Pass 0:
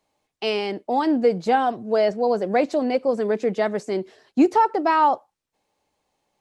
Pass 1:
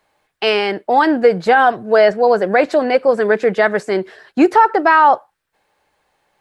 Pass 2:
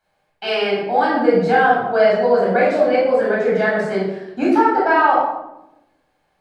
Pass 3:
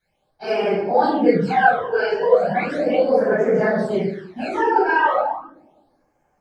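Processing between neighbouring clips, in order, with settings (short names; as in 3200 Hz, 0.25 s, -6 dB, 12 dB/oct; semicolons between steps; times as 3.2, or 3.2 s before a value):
fifteen-band EQ 100 Hz -3 dB, 250 Hz -7 dB, 1600 Hz +10 dB, 6300 Hz -6 dB; maximiser +9.5 dB; gain -1 dB
reverb RT60 0.90 s, pre-delay 17 ms, DRR -6.5 dB; gain -12.5 dB
phase scrambler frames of 50 ms; phaser stages 12, 0.36 Hz, lowest notch 200–3800 Hz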